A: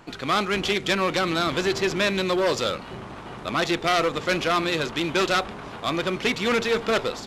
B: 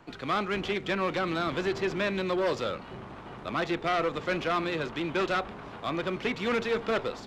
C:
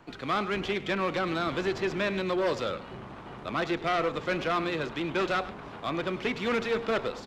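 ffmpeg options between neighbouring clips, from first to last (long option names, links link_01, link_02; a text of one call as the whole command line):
ffmpeg -i in.wav -filter_complex "[0:a]highshelf=frequency=5100:gain=-10.5,acrossover=split=250|1600|3000[link_01][link_02][link_03][link_04];[link_04]alimiter=level_in=6dB:limit=-24dB:level=0:latency=1:release=154,volume=-6dB[link_05];[link_01][link_02][link_03][link_05]amix=inputs=4:normalize=0,volume=-5dB" out.wav
ffmpeg -i in.wav -af "aecho=1:1:102:0.158" out.wav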